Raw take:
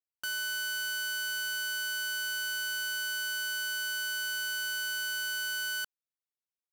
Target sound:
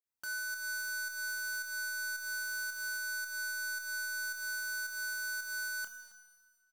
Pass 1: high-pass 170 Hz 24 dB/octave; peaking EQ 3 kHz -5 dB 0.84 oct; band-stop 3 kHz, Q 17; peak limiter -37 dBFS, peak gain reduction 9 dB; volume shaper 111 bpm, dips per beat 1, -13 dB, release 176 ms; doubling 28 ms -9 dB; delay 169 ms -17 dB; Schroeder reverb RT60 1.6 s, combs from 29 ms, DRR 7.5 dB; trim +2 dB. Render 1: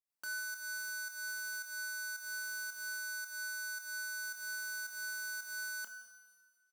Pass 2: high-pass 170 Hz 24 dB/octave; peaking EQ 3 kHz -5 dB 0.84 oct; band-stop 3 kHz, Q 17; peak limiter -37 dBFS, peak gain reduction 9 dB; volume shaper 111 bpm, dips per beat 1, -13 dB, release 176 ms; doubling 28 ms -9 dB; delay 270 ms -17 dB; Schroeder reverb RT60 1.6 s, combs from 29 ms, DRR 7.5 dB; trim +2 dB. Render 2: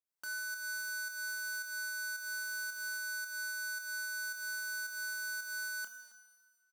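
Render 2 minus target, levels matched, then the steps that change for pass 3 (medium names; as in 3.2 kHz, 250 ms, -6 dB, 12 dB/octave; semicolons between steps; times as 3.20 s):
125 Hz band -9.5 dB
remove: high-pass 170 Hz 24 dB/octave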